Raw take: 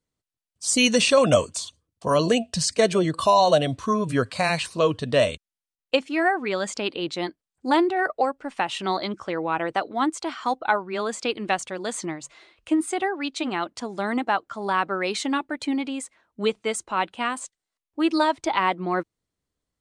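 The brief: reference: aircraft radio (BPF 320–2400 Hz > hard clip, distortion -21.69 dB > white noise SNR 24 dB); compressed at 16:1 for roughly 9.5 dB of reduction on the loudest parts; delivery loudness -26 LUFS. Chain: compressor 16:1, threshold -22 dBFS; BPF 320–2400 Hz; hard clip -19 dBFS; white noise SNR 24 dB; gain +5 dB

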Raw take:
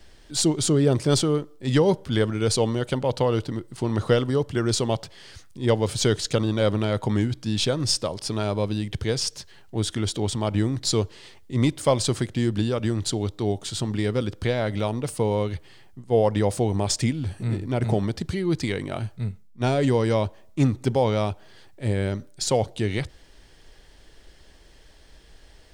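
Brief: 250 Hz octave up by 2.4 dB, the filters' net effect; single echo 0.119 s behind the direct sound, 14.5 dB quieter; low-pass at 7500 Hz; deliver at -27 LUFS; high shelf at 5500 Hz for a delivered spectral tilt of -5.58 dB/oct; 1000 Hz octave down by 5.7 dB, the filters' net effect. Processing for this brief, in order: LPF 7500 Hz; bell 250 Hz +3.5 dB; bell 1000 Hz -8.5 dB; high shelf 5500 Hz +4 dB; echo 0.119 s -14.5 dB; gain -3 dB

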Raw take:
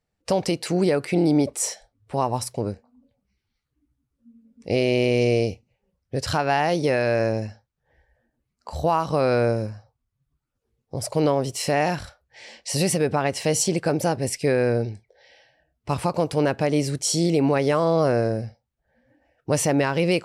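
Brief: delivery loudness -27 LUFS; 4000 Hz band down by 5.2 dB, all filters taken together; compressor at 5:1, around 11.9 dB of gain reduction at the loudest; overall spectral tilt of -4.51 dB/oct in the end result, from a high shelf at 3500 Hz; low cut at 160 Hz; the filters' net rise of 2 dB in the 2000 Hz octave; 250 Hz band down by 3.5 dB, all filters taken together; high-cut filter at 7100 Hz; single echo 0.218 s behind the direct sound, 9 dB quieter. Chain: HPF 160 Hz; LPF 7100 Hz; bell 250 Hz -4 dB; bell 2000 Hz +5 dB; high shelf 3500 Hz -3 dB; bell 4000 Hz -6 dB; compressor 5:1, threshold -31 dBFS; echo 0.218 s -9 dB; gain +8 dB

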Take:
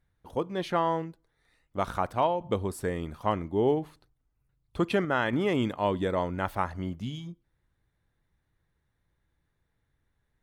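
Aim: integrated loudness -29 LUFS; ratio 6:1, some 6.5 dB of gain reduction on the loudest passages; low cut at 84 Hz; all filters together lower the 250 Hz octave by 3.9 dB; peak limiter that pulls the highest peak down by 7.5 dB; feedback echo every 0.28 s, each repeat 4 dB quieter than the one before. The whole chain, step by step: HPF 84 Hz; bell 250 Hz -5.5 dB; compressor 6:1, threshold -29 dBFS; limiter -24.5 dBFS; feedback echo 0.28 s, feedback 63%, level -4 dB; gain +7.5 dB

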